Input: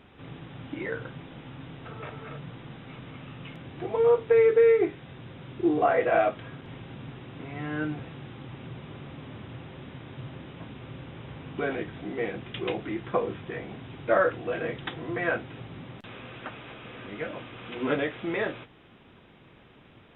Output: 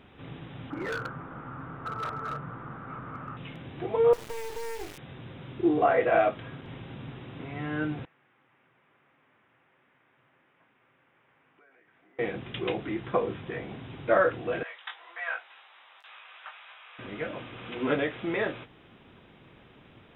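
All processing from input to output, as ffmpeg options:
-filter_complex "[0:a]asettb=1/sr,asplit=3[s0][s1][s2];[s0]atrim=end=0.704[s3];[s1]atrim=start=0.7:end=3.37,asetpts=PTS-STARTPTS,afade=t=in:d=0.004:c=qsin,afade=t=out:st=2.666:d=0.004:c=qsin,lowpass=f=1300:t=q:w=5.4,asoftclip=type=hard:threshold=0.0355[s4];[s2]atrim=start=3.366[s5];[s3][s4]acrossfade=d=0.004:c1=hsin:c2=qsin[s6];[s6][s5]acrossfade=d=0.004:c1=qsin:c2=hsin,asettb=1/sr,asplit=3[s7][s8][s9];[s7]atrim=end=4.134[s10];[s8]atrim=start=4.13:end=4.98,asetpts=PTS-STARTPTS,afade=t=in:d=0.004:c=qsin,afade=t=out:st=0.846:d=0.004:c=qsin,highshelf=f=2500:g=10,acompressor=threshold=0.0316:ratio=8:attack=3.2:release=140:knee=1:detection=peak,acrusher=bits=4:dc=4:mix=0:aa=0.000001[s11];[s9]atrim=start=4.976[s12];[s10][s11]acrossfade=d=0.004:c1=hsin:c2=qsin[s13];[s13][s12]acrossfade=d=0.004:c1=qsin:c2=hsin,asettb=1/sr,asplit=3[s14][s15][s16];[s14]atrim=end=8.054[s17];[s15]atrim=start=8.05:end=12.19,asetpts=PTS-STARTPTS,afade=t=in:d=0.004:c=qsin,afade=t=out:st=4.136:d=0.004:c=qsin,lowpass=f=2000:w=0.5412,lowpass=f=2000:w=1.3066,aderivative,acompressor=threshold=0.00126:ratio=6:attack=3.2:release=140:knee=1:detection=peak[s18];[s16]atrim=start=12.186[s19];[s17][s18]acrossfade=d=0.004:c1=hsin:c2=qsin[s20];[s20][s19]acrossfade=d=0.004:c1=qsin:c2=hsin,asettb=1/sr,asplit=3[s21][s22][s23];[s21]atrim=end=14.634[s24];[s22]atrim=start=14.63:end=16.99,asetpts=PTS-STARTPTS,afade=t=in:d=0.004:c=qsin,afade=t=out:st=2.356:d=0.004:c=qsin,highpass=f=840:w=0.5412,highpass=f=840:w=1.3066,flanger=delay=18:depth=2.6:speed=1.9[s25];[s23]atrim=start=16.986[s26];[s24][s25]acrossfade=d=0.004:c1=hsin:c2=qsin[s27];[s27][s26]acrossfade=d=0.004:c1=qsin:c2=hsin"

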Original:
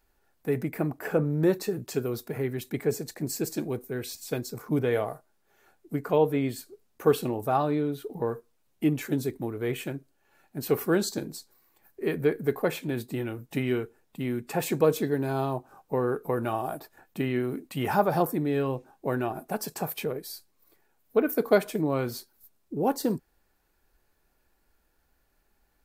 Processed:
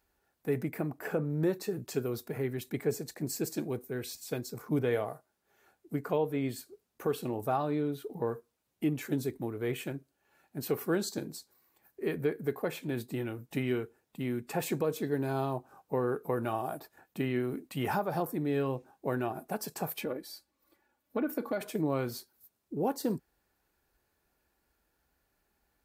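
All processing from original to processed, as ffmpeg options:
-filter_complex "[0:a]asettb=1/sr,asplit=3[s0][s1][s2];[s0]atrim=end=20.014[s3];[s1]atrim=start=20.01:end=21.61,asetpts=PTS-STARTPTS,afade=t=in:d=0.004:c=qsin,afade=t=out:st=1.596:d=0.004:c=qsin,highshelf=f=5700:g=-8,aecho=1:1:3.5:0.65,atrim=end_sample=70560,acompressor=threshold=0.0794:ratio=10:attack=3.2:release=140:knee=1:detection=peak[s4];[s2]atrim=start=21.606[s5];[s3][s4]acrossfade=d=0.004:c1=hsin:c2=qsin[s6];[s6][s5]acrossfade=d=0.004:c1=qsin:c2=hsin,highpass=49,alimiter=limit=0.158:level=0:latency=1:release=296,volume=0.668"

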